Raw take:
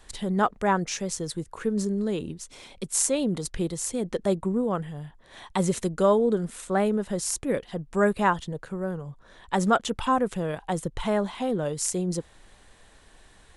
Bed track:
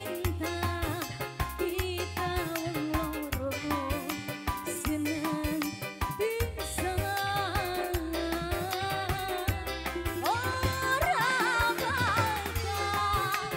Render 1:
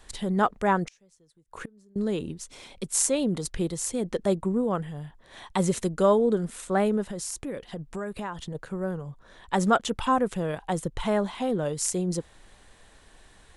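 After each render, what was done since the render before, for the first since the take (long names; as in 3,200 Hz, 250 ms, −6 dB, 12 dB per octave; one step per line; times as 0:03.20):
0:00.85–0:01.96: gate with flip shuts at −25 dBFS, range −30 dB
0:07.03–0:08.55: downward compressor, threshold −30 dBFS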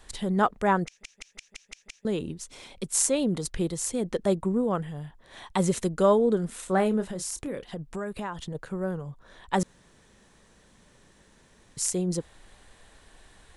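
0:00.86: stutter in place 0.17 s, 7 plays
0:06.49–0:07.64: double-tracking delay 27 ms −10.5 dB
0:09.63–0:11.77: fill with room tone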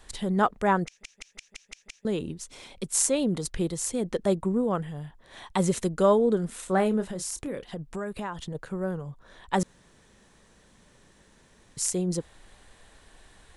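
no processing that can be heard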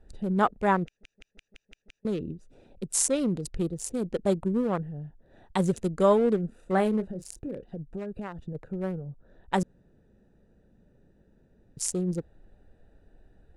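adaptive Wiener filter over 41 samples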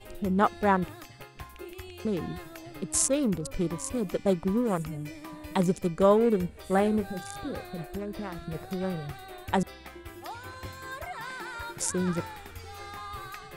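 mix in bed track −11.5 dB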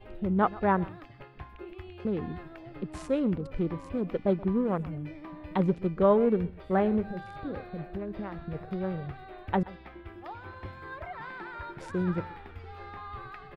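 high-frequency loss of the air 400 metres
single-tap delay 127 ms −20 dB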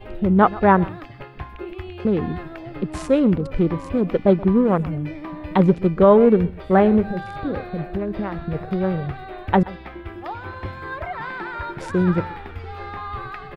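level +10.5 dB
brickwall limiter −3 dBFS, peak gain reduction 2.5 dB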